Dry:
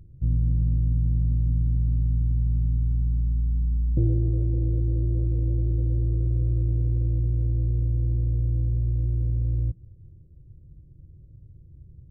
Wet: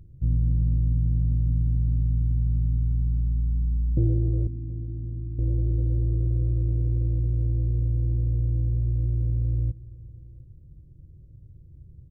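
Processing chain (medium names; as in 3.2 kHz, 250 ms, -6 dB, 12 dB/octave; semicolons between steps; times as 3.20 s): 4.47–5.39 s: four-pole ladder low-pass 290 Hz, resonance 50%; on a send: delay 727 ms -21.5 dB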